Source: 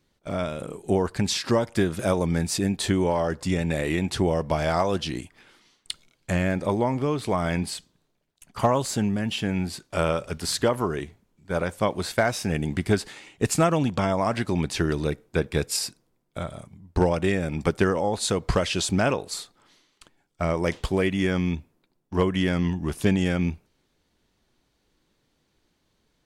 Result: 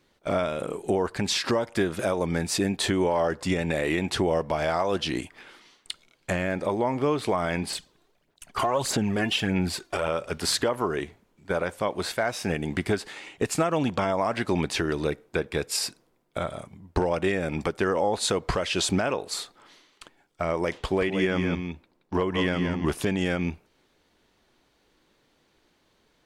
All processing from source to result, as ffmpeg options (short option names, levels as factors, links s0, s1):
-filter_complex "[0:a]asettb=1/sr,asplit=3[s0][s1][s2];[s0]atrim=end=7.704[s3];[s1]atrim=start=7.7:end=10.08,asetpts=PTS-STARTPTS,afade=t=in:d=0.004:c=qsin,afade=t=out:st=2.376:d=0.004:c=qsin,aphaser=in_gain=1:out_gain=1:delay=2.9:decay=0.53:speed=1.6:type=sinusoidal,acompressor=threshold=0.1:ratio=10:attack=3.2:release=140:knee=1:detection=peak[s4];[s2]atrim=start=10.076[s5];[s3][s4]acrossfade=d=0.004:c1=hsin:c2=qsin[s6];[s6][s5]acrossfade=d=0.004:c1=qsin:c2=hsin,asettb=1/sr,asplit=3[s7][s8][s9];[s7]atrim=end=20.784[s10];[s8]atrim=start=20.78:end=22.86,asetpts=PTS-STARTPTS,afade=t=in:d=0.004:c=qsin,afade=t=out:st=2.076:d=0.004:c=qsin,highshelf=f=8600:g=-7,aecho=1:1:174:0.398,atrim=end_sample=91728[s11];[s9]atrim=start=22.856[s12];[s10][s11]acrossfade=d=0.004:c1=hsin:c2=qsin[s13];[s13][s12]acrossfade=d=0.004:c1=qsin:c2=hsin,bass=f=250:g=-8,treble=f=4000:g=-5,alimiter=limit=0.0944:level=0:latency=1:release=423,volume=2.24"